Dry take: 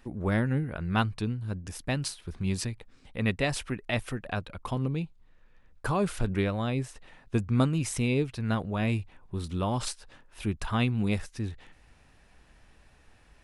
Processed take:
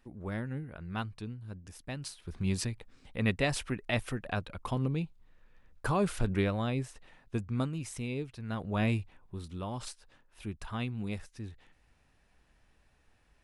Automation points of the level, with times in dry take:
0:01.98 −10 dB
0:02.39 −1.5 dB
0:06.52 −1.5 dB
0:07.87 −9.5 dB
0:08.49 −9.5 dB
0:08.78 0 dB
0:09.50 −9 dB

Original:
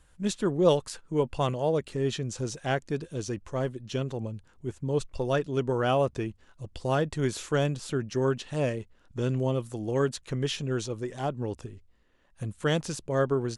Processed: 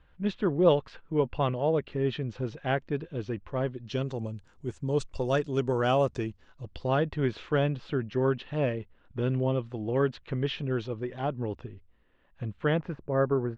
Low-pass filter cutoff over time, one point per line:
low-pass filter 24 dB per octave
0:03.62 3,300 Hz
0:04.24 7,900 Hz
0:06.07 7,900 Hz
0:07.11 3,400 Hz
0:12.53 3,400 Hz
0:13.03 1,700 Hz

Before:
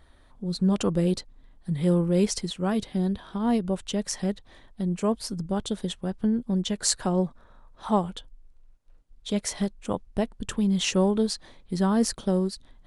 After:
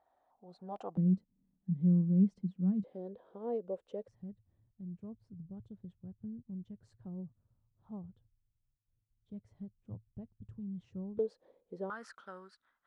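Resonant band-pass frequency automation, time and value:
resonant band-pass, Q 6.4
750 Hz
from 0:00.97 190 Hz
from 0:02.84 500 Hz
from 0:04.08 110 Hz
from 0:11.19 490 Hz
from 0:11.90 1,400 Hz

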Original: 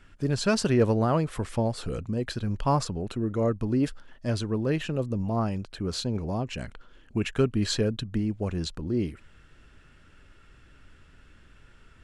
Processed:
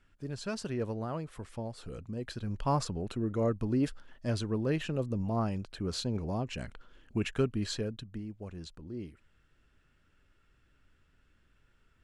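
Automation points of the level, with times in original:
0:01.68 −12.5 dB
0:02.87 −4 dB
0:07.27 −4 dB
0:08.27 −13.5 dB

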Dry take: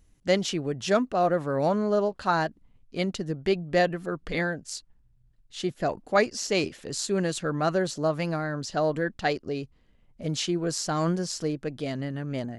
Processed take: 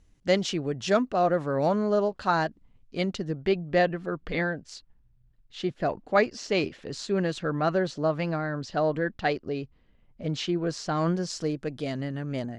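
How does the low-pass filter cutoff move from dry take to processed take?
0:02.97 7,200 Hz
0:03.52 4,000 Hz
0:10.97 4,000 Hz
0:11.60 9,400 Hz

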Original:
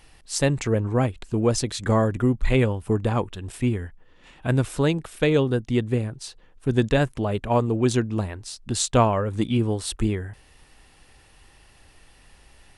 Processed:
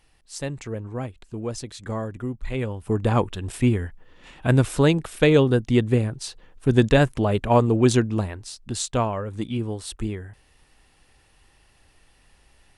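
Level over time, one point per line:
0:02.52 −9 dB
0:03.15 +3.5 dB
0:07.90 +3.5 dB
0:08.99 −5 dB

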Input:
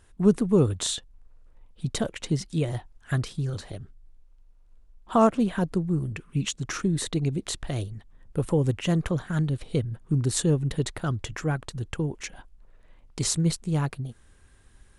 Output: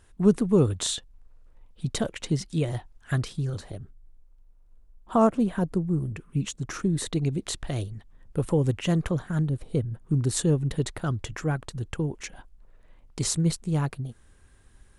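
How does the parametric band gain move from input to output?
parametric band 3,400 Hz 2.5 octaves
0:03.34 0 dB
0:03.79 −6.5 dB
0:06.70 −6.5 dB
0:07.19 −0.5 dB
0:09.02 −0.5 dB
0:09.61 −11 dB
0:10.17 −2 dB

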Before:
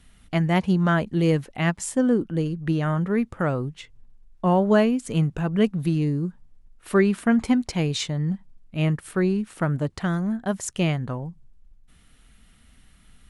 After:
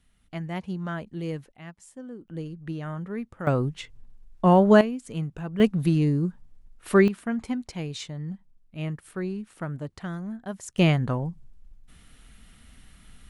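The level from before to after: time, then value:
−11.5 dB
from 0:01.52 −20 dB
from 0:02.28 −10 dB
from 0:03.47 +2.5 dB
from 0:04.81 −8.5 dB
from 0:05.60 +1 dB
from 0:07.08 −9 dB
from 0:10.78 +3 dB

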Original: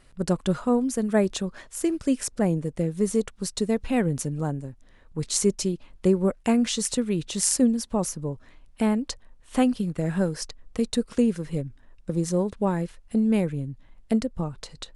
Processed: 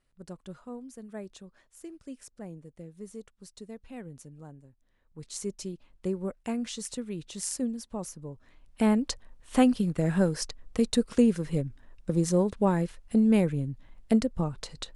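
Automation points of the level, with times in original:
0:04.64 −19 dB
0:05.74 −10.5 dB
0:08.29 −10.5 dB
0:08.90 0 dB

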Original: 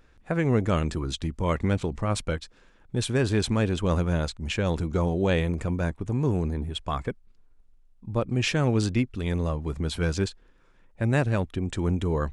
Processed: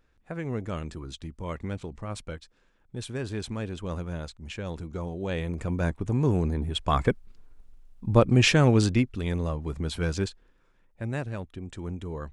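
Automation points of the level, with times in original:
0:05.19 −9 dB
0:05.89 +1 dB
0:06.63 +1 dB
0:07.10 +7.5 dB
0:08.19 +7.5 dB
0:09.39 −2 dB
0:10.23 −2 dB
0:11.33 −9.5 dB

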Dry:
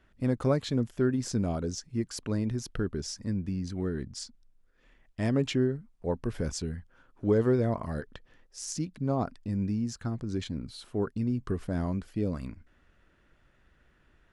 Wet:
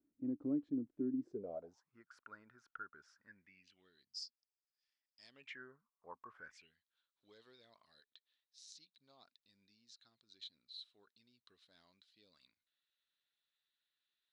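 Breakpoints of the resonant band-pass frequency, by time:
resonant band-pass, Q 11
0:01.20 290 Hz
0:01.99 1,400 Hz
0:03.19 1,400 Hz
0:04.13 5,000 Hz
0:05.21 5,000 Hz
0:05.71 1,100 Hz
0:06.32 1,100 Hz
0:06.77 3,900 Hz

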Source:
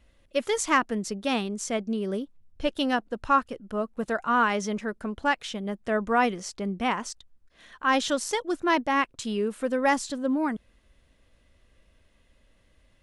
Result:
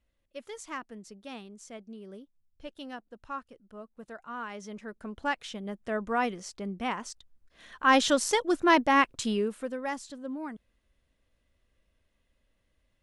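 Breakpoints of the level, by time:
0:04.41 −16 dB
0:05.23 −5.5 dB
0:07.03 −5.5 dB
0:07.93 +2 dB
0:09.27 +2 dB
0:09.83 −11 dB

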